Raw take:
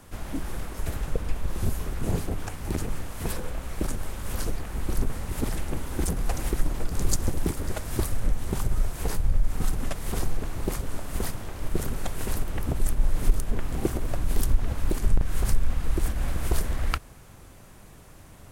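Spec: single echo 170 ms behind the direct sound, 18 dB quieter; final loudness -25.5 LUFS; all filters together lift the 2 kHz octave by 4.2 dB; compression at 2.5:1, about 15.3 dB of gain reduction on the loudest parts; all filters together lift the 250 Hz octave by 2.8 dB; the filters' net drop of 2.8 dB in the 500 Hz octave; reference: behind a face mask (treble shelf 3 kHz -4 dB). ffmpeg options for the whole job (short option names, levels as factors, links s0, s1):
-af "equalizer=f=250:t=o:g=5.5,equalizer=f=500:t=o:g=-6.5,equalizer=f=2000:t=o:g=7,acompressor=threshold=0.0141:ratio=2.5,highshelf=f=3000:g=-4,aecho=1:1:170:0.126,volume=6.31"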